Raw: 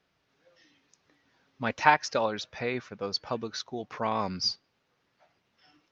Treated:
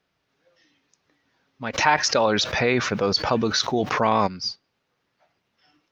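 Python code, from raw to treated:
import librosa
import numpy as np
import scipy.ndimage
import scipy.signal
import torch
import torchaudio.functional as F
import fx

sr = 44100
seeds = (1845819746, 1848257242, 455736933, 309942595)

y = fx.env_flatten(x, sr, amount_pct=70, at=(1.73, 4.26), fade=0.02)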